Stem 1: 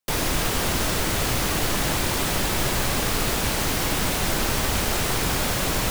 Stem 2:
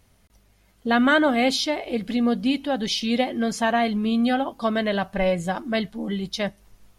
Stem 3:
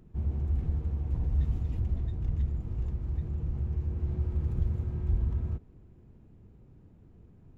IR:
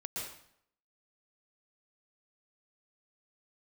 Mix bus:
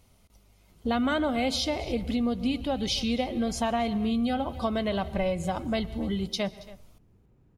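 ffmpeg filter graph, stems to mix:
-filter_complex "[1:a]equalizer=f=1.7k:t=o:w=0.25:g=-12.5,volume=-1.5dB,asplit=3[a][b][c];[b]volume=-19dB[d];[c]volume=-21dB[e];[2:a]lowshelf=f=480:g=-6.5,acompressor=threshold=-33dB:ratio=6,adelay=700,volume=-1dB[f];[3:a]atrim=start_sample=2205[g];[d][g]afir=irnorm=-1:irlink=0[h];[e]aecho=0:1:276:1[i];[a][f][h][i]amix=inputs=4:normalize=0,acompressor=threshold=-25dB:ratio=3"

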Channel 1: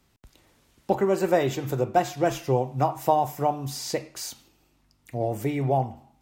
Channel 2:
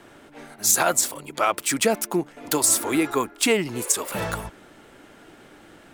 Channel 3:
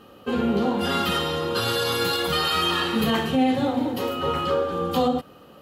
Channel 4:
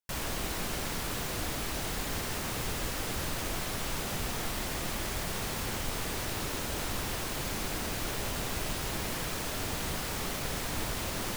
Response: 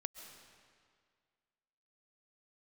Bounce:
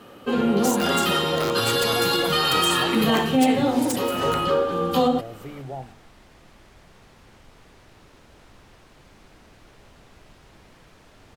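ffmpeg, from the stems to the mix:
-filter_complex "[0:a]volume=-11.5dB[a];[1:a]acompressor=threshold=-23dB:ratio=5,aeval=exprs='(mod(5.96*val(0)+1,2)-1)/5.96':c=same,volume=-5.5dB,asplit=2[b][c];[c]volume=-14.5dB[d];[2:a]highpass=f=100:w=0.5412,highpass=f=100:w=1.3066,volume=2dB[e];[3:a]aemphasis=mode=reproduction:type=50fm,adelay=1600,volume=-16dB[f];[4:a]atrim=start_sample=2205[g];[d][g]afir=irnorm=-1:irlink=0[h];[a][b][e][f][h]amix=inputs=5:normalize=0"

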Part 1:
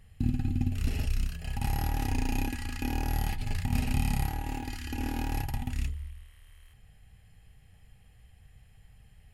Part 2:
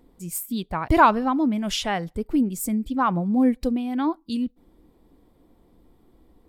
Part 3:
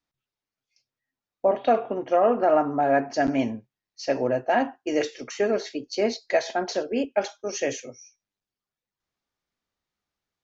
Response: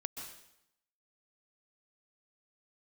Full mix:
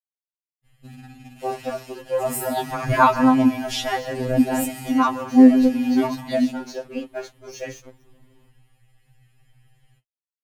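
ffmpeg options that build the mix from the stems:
-filter_complex "[0:a]acrossover=split=480[a][b];[a]acompressor=threshold=-43dB:ratio=6[c];[c][b]amix=inputs=2:normalize=0,adynamicequalizer=threshold=0.00224:dfrequency=330:dqfactor=7.4:tfrequency=330:tqfactor=7.4:attack=5:release=100:ratio=0.375:range=2:mode=boostabove:tftype=bell,adelay=650,volume=-0.5dB,asplit=2[d][e];[e]volume=-7.5dB[f];[1:a]adelay=2000,volume=0dB,asplit=2[g][h];[h]volume=-5.5dB[i];[2:a]aeval=exprs='sgn(val(0))*max(abs(val(0))-0.00794,0)':c=same,volume=-2dB[j];[3:a]atrim=start_sample=2205[k];[f][i]amix=inputs=2:normalize=0[l];[l][k]afir=irnorm=-1:irlink=0[m];[d][g][j][m]amix=inputs=4:normalize=0,adynamicequalizer=threshold=0.00891:dfrequency=110:dqfactor=1.5:tfrequency=110:tqfactor=1.5:attack=5:release=100:ratio=0.375:range=4:mode=boostabove:tftype=bell,afftfilt=real='re*2.45*eq(mod(b,6),0)':imag='im*2.45*eq(mod(b,6),0)':win_size=2048:overlap=0.75"

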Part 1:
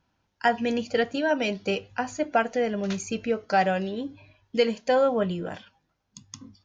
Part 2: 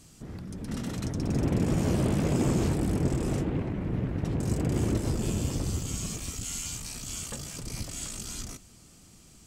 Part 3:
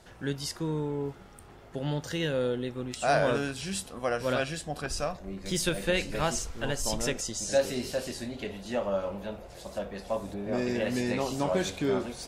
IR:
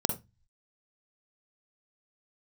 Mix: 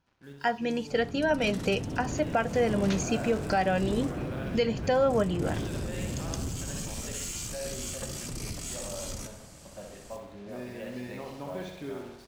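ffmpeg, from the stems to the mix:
-filter_complex "[0:a]volume=-4.5dB[a];[1:a]asoftclip=type=tanh:threshold=-28.5dB,adelay=700,volume=-4dB,asplit=2[b][c];[c]volume=-15.5dB[d];[2:a]lowpass=3.6k,acrusher=bits=6:mix=0:aa=0.5,volume=-17dB,asplit=2[e][f];[f]volume=-6dB[g];[b][e]amix=inputs=2:normalize=0,alimiter=level_in=11dB:limit=-24dB:level=0:latency=1:release=83,volume=-11dB,volume=0dB[h];[d][g]amix=inputs=2:normalize=0,aecho=0:1:64|128|192|256|320|384|448|512|576:1|0.58|0.336|0.195|0.113|0.0656|0.0381|0.0221|0.0128[i];[a][h][i]amix=inputs=3:normalize=0,dynaudnorm=f=840:g=3:m=6.5dB,alimiter=limit=-16dB:level=0:latency=1:release=217"

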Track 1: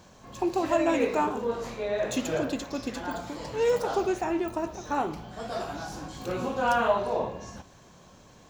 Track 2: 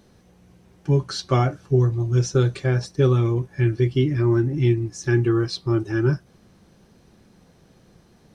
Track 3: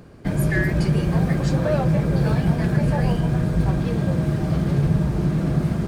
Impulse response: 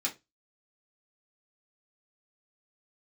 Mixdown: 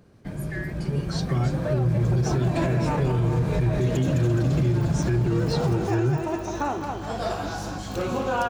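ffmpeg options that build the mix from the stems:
-filter_complex "[0:a]aeval=exprs='val(0)+0.00891*(sin(2*PI*50*n/s)+sin(2*PI*2*50*n/s)/2+sin(2*PI*3*50*n/s)/3+sin(2*PI*4*50*n/s)/4+sin(2*PI*5*50*n/s)/5)':c=same,adelay=1700,volume=-3.5dB,asplit=2[a][b];[b]volume=-9dB[c];[1:a]agate=range=-33dB:threshold=-50dB:ratio=3:detection=peak,highpass=47,lowshelf=f=170:g=11.5,volume=-6dB,asplit=2[d][e];[e]volume=-15dB[f];[2:a]volume=-11dB[g];[a][d]amix=inputs=2:normalize=0,alimiter=limit=-24dB:level=0:latency=1:release=353,volume=0dB[h];[3:a]atrim=start_sample=2205[i];[f][i]afir=irnorm=-1:irlink=0[j];[c]aecho=0:1:210|420|630|840|1050|1260|1470:1|0.51|0.26|0.133|0.0677|0.0345|0.0176[k];[g][h][j][k]amix=inputs=4:normalize=0,dynaudnorm=f=340:g=9:m=8dB,alimiter=limit=-15dB:level=0:latency=1:release=73"

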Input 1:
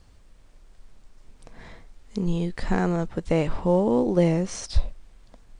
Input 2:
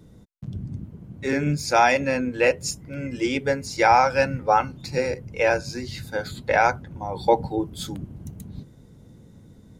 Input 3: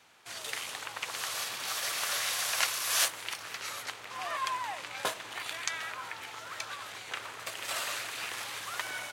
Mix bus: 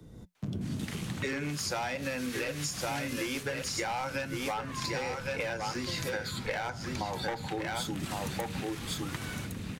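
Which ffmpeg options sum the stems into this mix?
-filter_complex "[0:a]adelay=1700,volume=-14dB[a];[1:a]dynaudnorm=f=110:g=5:m=10dB,asoftclip=type=hard:threshold=-10dB,volume=3dB,asplit=2[b][c];[c]volume=-9dB[d];[2:a]dynaudnorm=f=260:g=3:m=6dB,adelay=350,volume=-5.5dB,asplit=2[e][f];[f]volume=-8dB[g];[d][g]amix=inputs=2:normalize=0,aecho=0:1:1109:1[h];[a][b][e][h]amix=inputs=4:normalize=0,acrossover=split=110|220|950[i][j][k][l];[i]acompressor=threshold=-41dB:ratio=4[m];[j]acompressor=threshold=-32dB:ratio=4[n];[k]acompressor=threshold=-26dB:ratio=4[o];[l]acompressor=threshold=-22dB:ratio=4[p];[m][n][o][p]amix=inputs=4:normalize=0,flanger=delay=2.5:depth=6.9:regen=-86:speed=0.22:shape=sinusoidal,acompressor=threshold=-31dB:ratio=6"

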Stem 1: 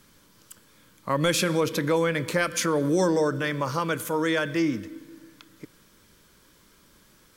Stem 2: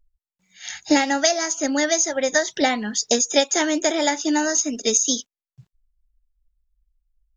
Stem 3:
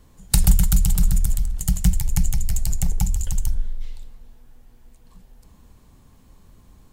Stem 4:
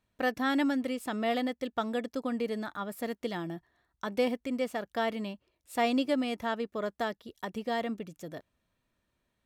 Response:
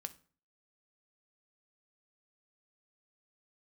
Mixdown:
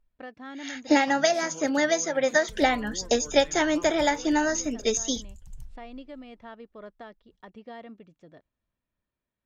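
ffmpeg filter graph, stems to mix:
-filter_complex "[0:a]volume=-13dB[a];[1:a]bass=f=250:g=-5,treble=f=4k:g=-10,volume=-1.5dB,asplit=2[b][c];[2:a]agate=range=-19dB:threshold=-43dB:ratio=16:detection=peak,tremolo=f=3.2:d=0.45,adelay=2150,volume=-18dB[d];[3:a]lowpass=4.4k,volume=-9.5dB[e];[c]apad=whole_len=324710[f];[a][f]sidechaingate=range=-33dB:threshold=-38dB:ratio=16:detection=peak[g];[g][d][e]amix=inputs=3:normalize=0,highshelf=f=6.8k:g=-10,alimiter=level_in=8.5dB:limit=-24dB:level=0:latency=1:release=430,volume=-8.5dB,volume=0dB[h];[b][h]amix=inputs=2:normalize=0"

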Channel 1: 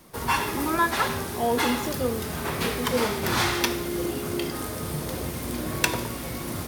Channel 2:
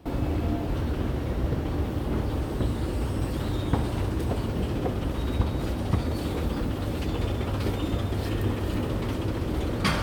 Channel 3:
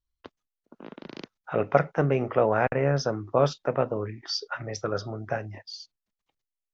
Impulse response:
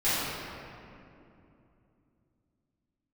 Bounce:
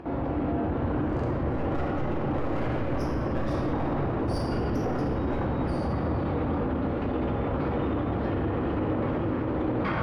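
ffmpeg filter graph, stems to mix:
-filter_complex "[1:a]lowpass=1.5k,lowshelf=f=74:g=-10.5,acompressor=mode=upward:threshold=-38dB:ratio=2.5,volume=-2.5dB,asplit=2[a][b];[b]volume=-11dB[c];[2:a]highpass=130,aeval=exprs='max(val(0),0)':c=same,volume=-16.5dB,asplit=2[d][e];[e]volume=-4dB[f];[3:a]atrim=start_sample=2205[g];[c][f]amix=inputs=2:normalize=0[h];[h][g]afir=irnorm=-1:irlink=0[i];[a][d][i]amix=inputs=3:normalize=0,equalizer=f=1.6k:w=0.31:g=3.5,alimiter=limit=-20dB:level=0:latency=1:release=21"

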